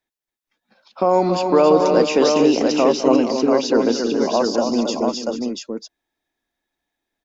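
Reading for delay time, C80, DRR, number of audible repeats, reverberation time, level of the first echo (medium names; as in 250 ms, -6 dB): 203 ms, no reverb, no reverb, 4, no reverb, -15.0 dB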